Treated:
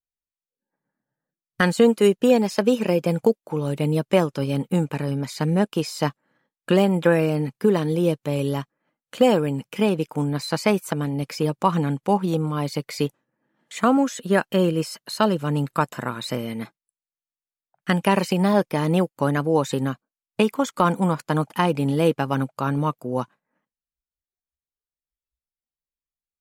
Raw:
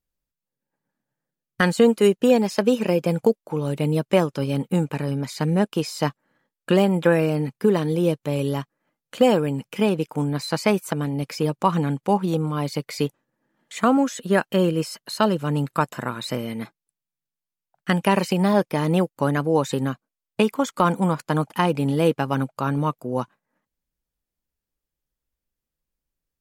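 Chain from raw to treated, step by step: spectral noise reduction 17 dB

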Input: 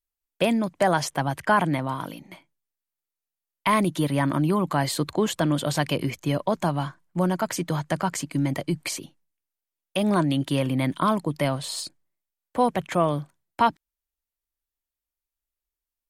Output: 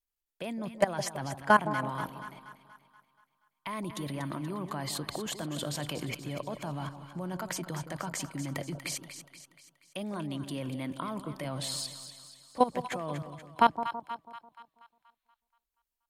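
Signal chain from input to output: time-frequency box 14.12–15.40 s, 1.2–4.4 kHz +11 dB; level held to a coarse grid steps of 18 dB; two-band feedback delay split 970 Hz, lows 164 ms, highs 239 ms, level -10 dB

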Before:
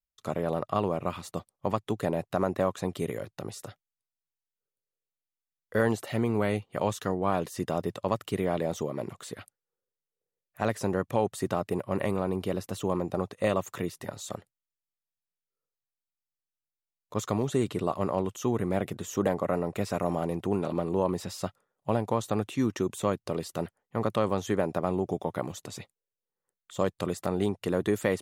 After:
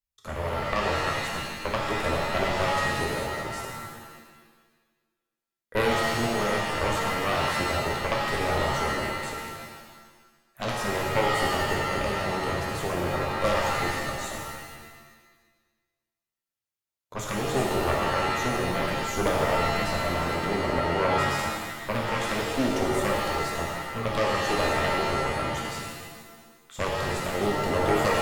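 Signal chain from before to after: Chebyshev shaper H 4 -8 dB, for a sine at -12 dBFS; pitch-shifted reverb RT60 1.3 s, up +7 st, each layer -2 dB, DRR -1.5 dB; trim -1.5 dB

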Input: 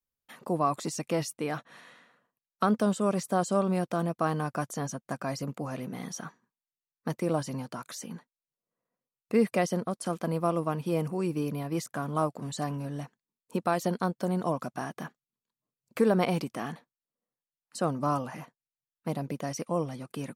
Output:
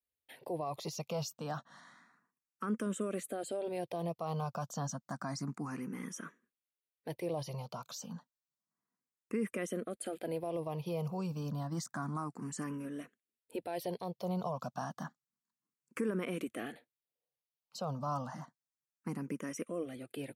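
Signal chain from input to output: high-pass 61 Hz; peak limiter -22 dBFS, peak gain reduction 9.5 dB; barber-pole phaser +0.3 Hz; trim -2 dB

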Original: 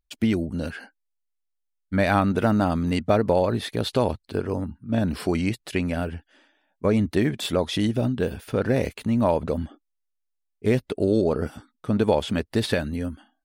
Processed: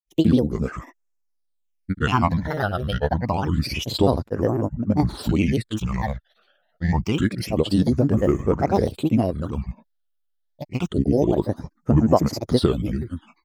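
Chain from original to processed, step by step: granulator, pitch spread up and down by 7 st; phase shifter stages 8, 0.27 Hz, lowest notch 280–3900 Hz; trim +5 dB

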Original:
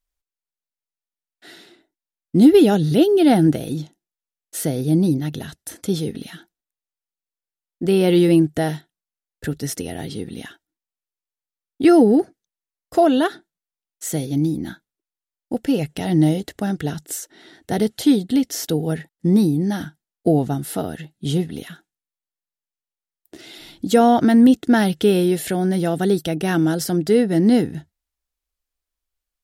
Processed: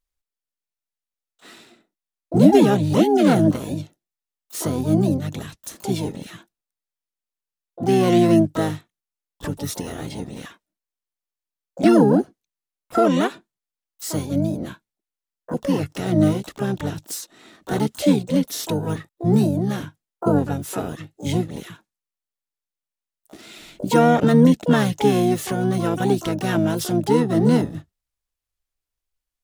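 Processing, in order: harmony voices -7 st -4 dB, +12 st -7 dB; trim -3.5 dB

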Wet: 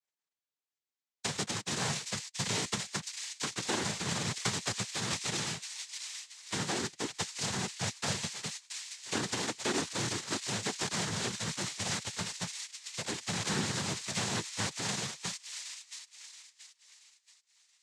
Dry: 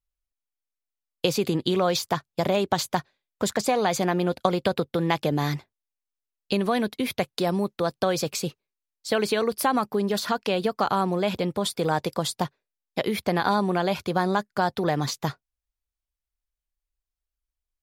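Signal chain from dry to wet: formants flattened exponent 0.1; feedback echo behind a high-pass 678 ms, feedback 39%, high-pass 3.2 kHz, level -4 dB; noise-vocoded speech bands 6; trim -8 dB

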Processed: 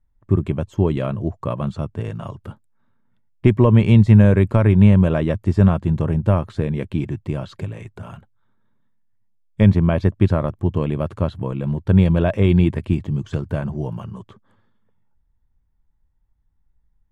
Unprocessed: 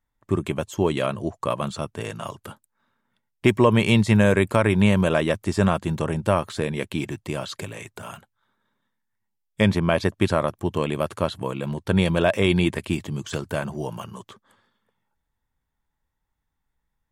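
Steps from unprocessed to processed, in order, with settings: RIAA curve playback; trim -3 dB

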